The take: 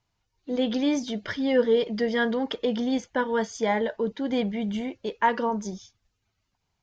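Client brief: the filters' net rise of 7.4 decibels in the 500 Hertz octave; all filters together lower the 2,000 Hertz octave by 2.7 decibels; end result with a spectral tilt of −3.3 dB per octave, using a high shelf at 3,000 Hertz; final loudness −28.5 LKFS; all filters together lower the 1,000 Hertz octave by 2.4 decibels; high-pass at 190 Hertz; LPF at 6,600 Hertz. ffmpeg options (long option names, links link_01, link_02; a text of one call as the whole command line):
ffmpeg -i in.wav -af "highpass=190,lowpass=6600,equalizer=frequency=500:width_type=o:gain=9,equalizer=frequency=1000:width_type=o:gain=-6,equalizer=frequency=2000:width_type=o:gain=-4.5,highshelf=frequency=3000:gain=8.5,volume=-6.5dB" out.wav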